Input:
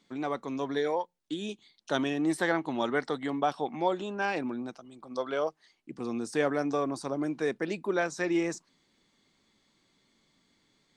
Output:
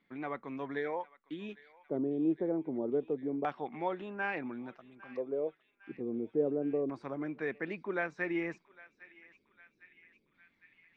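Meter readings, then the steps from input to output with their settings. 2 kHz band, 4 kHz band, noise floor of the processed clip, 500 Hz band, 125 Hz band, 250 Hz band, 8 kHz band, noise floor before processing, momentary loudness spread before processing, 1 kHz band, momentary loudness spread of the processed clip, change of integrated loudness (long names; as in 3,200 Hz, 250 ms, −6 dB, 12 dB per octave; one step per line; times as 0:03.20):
−5.0 dB, below −15 dB, −75 dBFS, −4.0 dB, −5.0 dB, −4.0 dB, below −25 dB, −72 dBFS, 10 LU, −8.0 dB, 15 LU, −4.5 dB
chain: low-shelf EQ 200 Hz +3.5 dB
auto-filter low-pass square 0.29 Hz 430–2,100 Hz
on a send: feedback echo with a band-pass in the loop 806 ms, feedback 76%, band-pass 2,900 Hz, level −16.5 dB
on the sum: level −8 dB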